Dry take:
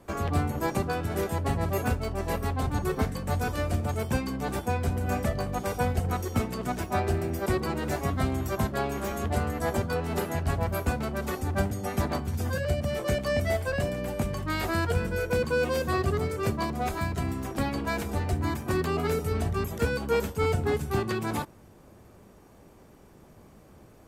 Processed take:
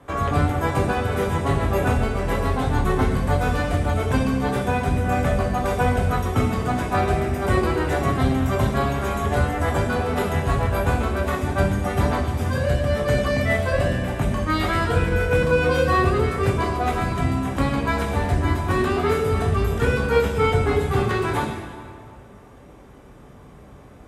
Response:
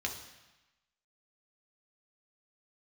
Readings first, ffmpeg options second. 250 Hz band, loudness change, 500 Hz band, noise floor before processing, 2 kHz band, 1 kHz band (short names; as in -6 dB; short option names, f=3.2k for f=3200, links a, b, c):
+6.5 dB, +7.5 dB, +7.0 dB, -54 dBFS, +8.0 dB, +8.5 dB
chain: -filter_complex "[1:a]atrim=start_sample=2205,asetrate=24255,aresample=44100[a];[0:a][a]afir=irnorm=-1:irlink=0"